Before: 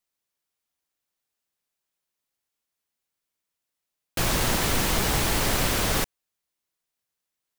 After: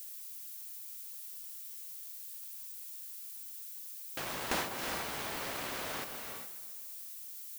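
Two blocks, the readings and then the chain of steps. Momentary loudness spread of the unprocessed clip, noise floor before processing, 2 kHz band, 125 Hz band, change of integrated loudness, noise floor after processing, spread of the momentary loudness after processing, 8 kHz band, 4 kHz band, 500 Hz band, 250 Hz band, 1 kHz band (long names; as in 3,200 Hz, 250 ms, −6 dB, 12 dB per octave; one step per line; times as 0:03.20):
5 LU, −85 dBFS, −10.5 dB, −22.5 dB, −16.0 dB, −46 dBFS, 8 LU, −13.0 dB, −13.0 dB, −12.0 dB, −15.5 dB, −10.0 dB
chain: noise gate with hold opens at −11 dBFS
high-pass filter 530 Hz 6 dB per octave
leveller curve on the samples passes 2
high-shelf EQ 4,500 Hz −10.5 dB
on a send: delay that swaps between a low-pass and a high-pass 135 ms, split 1,400 Hz, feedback 60%, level −13 dB
on the sum: reverb whose tail is shaped and stops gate 440 ms rising, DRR 10 dB
downward compressor 3 to 1, threshold −45 dBFS, peak gain reduction 15.5 dB
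background noise violet −54 dBFS
level +8 dB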